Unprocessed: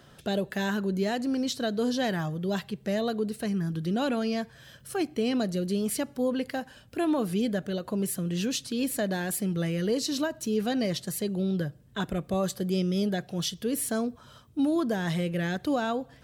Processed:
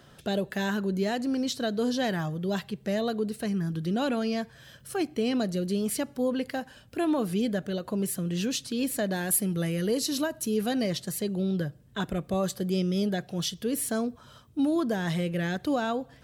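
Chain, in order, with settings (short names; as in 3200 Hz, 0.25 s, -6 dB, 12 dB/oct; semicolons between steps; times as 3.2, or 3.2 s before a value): 9.16–10.84 bell 11000 Hz +10 dB 0.49 oct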